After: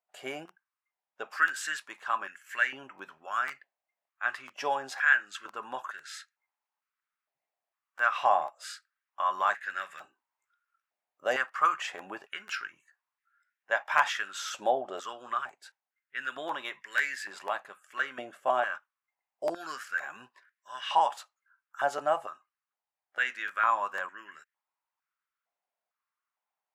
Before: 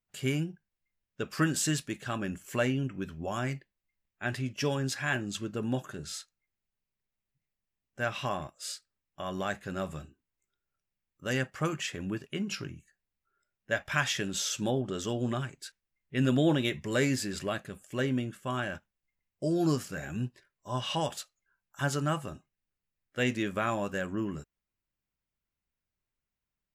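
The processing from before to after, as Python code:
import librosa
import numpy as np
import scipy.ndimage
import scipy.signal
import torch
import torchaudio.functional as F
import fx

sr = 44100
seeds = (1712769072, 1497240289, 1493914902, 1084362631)

y = fx.high_shelf(x, sr, hz=2700.0, db=-11.5)
y = fx.rider(y, sr, range_db=10, speed_s=2.0)
y = fx.buffer_crackle(y, sr, first_s=0.47, period_s=0.5, block=512, kind='repeat')
y = fx.filter_held_highpass(y, sr, hz=2.2, low_hz=700.0, high_hz=1700.0)
y = F.gain(torch.from_numpy(y), 1.5).numpy()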